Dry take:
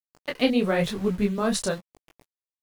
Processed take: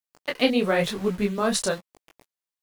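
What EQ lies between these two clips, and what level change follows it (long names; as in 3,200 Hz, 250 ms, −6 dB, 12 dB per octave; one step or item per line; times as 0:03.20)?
low-shelf EQ 220 Hz −8.5 dB
+3.0 dB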